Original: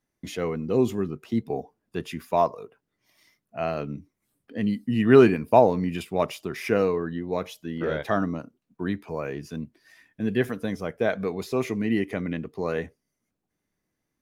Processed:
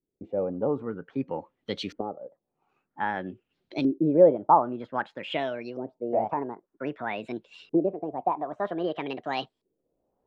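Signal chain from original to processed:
gliding playback speed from 111% → 166%
camcorder AGC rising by 7.8 dB per second
auto-filter low-pass saw up 0.52 Hz 370–5,000 Hz
level −8 dB

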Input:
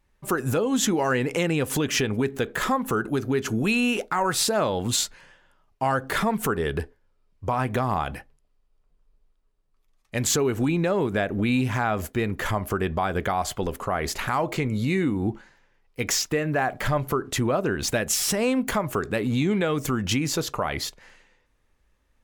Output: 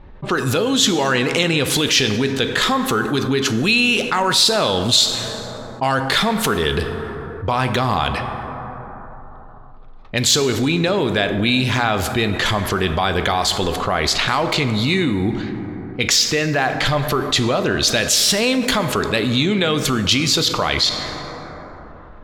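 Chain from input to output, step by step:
low-pass that shuts in the quiet parts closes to 920 Hz, open at −23 dBFS
parametric band 3,900 Hz +15 dB 1.1 octaves
dense smooth reverb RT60 2.4 s, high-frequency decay 0.4×, DRR 10 dB
envelope flattener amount 50%
level −1 dB

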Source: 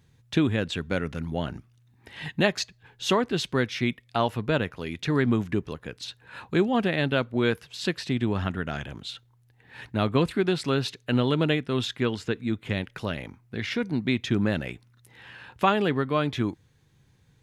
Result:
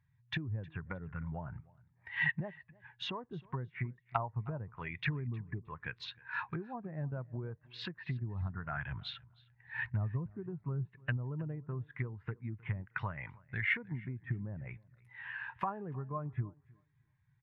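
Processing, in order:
treble cut that deepens with the level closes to 600 Hz, closed at −23 dBFS
0:08.91–0:11.17: low-shelf EQ 150 Hz +6.5 dB
downward compressor 8 to 1, threshold −31 dBFS, peak gain reduction 14.5 dB
octave-band graphic EQ 125/250/500/1,000/2,000/8,000 Hz +5/−8/−5/+10/+10/−4 dB
repeating echo 312 ms, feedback 29%, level −16.5 dB
every bin expanded away from the loudest bin 1.5 to 1
level −6 dB

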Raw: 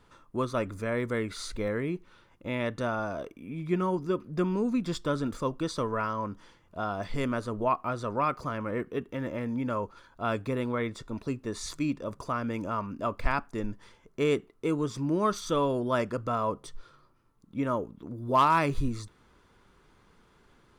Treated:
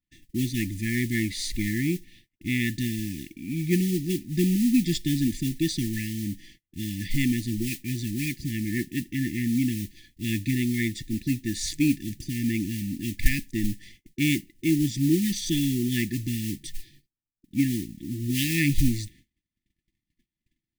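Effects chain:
noise gate −56 dBFS, range −35 dB
noise that follows the level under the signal 18 dB
linear-phase brick-wall band-stop 360–1,700 Hz
level +7.5 dB

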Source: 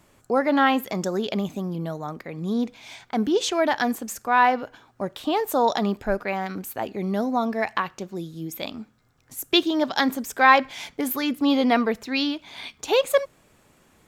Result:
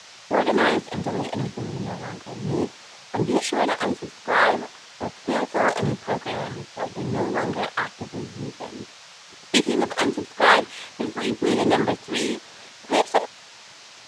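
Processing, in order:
low-pass that shuts in the quiet parts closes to 700 Hz, open at −17 dBFS
cochlear-implant simulation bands 6
noise in a band 510–6,300 Hz −46 dBFS

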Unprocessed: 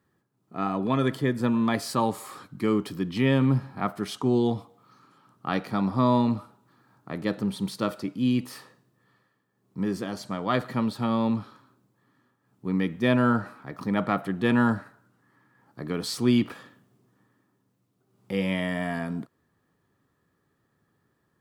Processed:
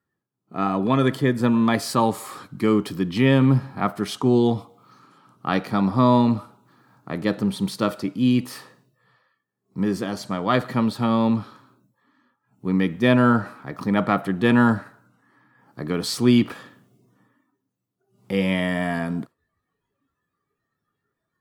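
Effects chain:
noise reduction from a noise print of the clip's start 15 dB
level +5 dB

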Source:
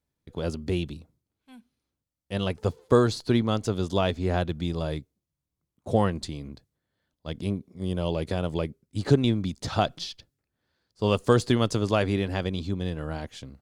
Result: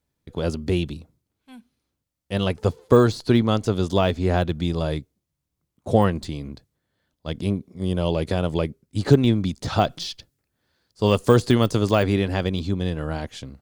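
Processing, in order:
de-essing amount 90%
0:09.89–0:12.03: high-shelf EQ 5,800 Hz +5 dB
level +5 dB

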